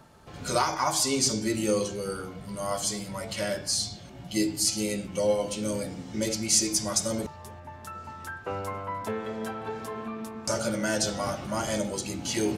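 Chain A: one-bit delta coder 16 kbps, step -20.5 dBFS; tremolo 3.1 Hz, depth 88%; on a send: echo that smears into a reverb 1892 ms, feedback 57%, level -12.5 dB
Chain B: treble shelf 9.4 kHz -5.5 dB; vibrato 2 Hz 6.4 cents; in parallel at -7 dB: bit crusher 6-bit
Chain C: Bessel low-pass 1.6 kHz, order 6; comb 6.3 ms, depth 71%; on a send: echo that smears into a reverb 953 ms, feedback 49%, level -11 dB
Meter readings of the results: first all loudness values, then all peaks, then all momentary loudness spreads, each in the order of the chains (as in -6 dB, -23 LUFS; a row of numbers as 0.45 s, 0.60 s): -30.0 LUFS, -26.0 LUFS, -30.5 LUFS; -12.0 dBFS, -7.5 dBFS, -12.0 dBFS; 2 LU, 13 LU, 13 LU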